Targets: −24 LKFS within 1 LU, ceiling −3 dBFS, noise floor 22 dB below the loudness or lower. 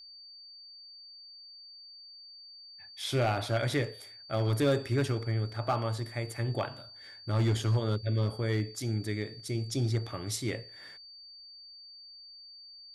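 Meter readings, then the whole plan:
share of clipped samples 0.4%; peaks flattened at −21.0 dBFS; interfering tone 4,600 Hz; level of the tone −48 dBFS; integrated loudness −31.5 LKFS; sample peak −21.0 dBFS; target loudness −24.0 LKFS
→ clipped peaks rebuilt −21 dBFS
notch filter 4,600 Hz, Q 30
level +7.5 dB

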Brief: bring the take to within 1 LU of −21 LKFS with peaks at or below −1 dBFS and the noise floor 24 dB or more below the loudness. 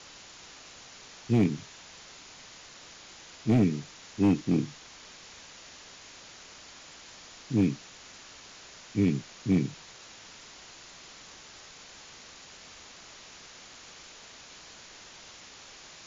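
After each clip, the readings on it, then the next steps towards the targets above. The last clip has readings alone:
share of clipped samples 0.4%; peaks flattened at −17.0 dBFS; background noise floor −50 dBFS; target noise floor −53 dBFS; integrated loudness −28.5 LKFS; sample peak −17.0 dBFS; target loudness −21.0 LKFS
→ clipped peaks rebuilt −17 dBFS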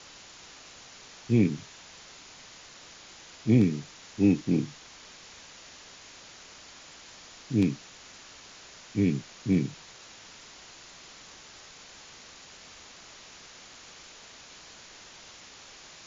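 share of clipped samples 0.0%; background noise floor −50 dBFS; target noise floor −52 dBFS
→ broadband denoise 6 dB, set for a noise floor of −50 dBFS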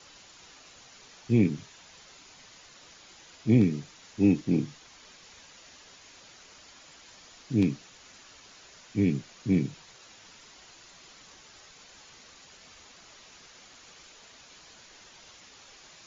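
background noise floor −54 dBFS; integrated loudness −27.5 LKFS; sample peak −10.0 dBFS; target loudness −21.0 LKFS
→ level +6.5 dB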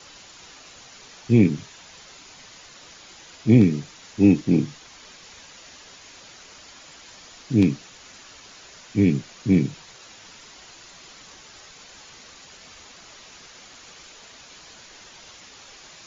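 integrated loudness −21.0 LKFS; sample peak −3.5 dBFS; background noise floor −47 dBFS

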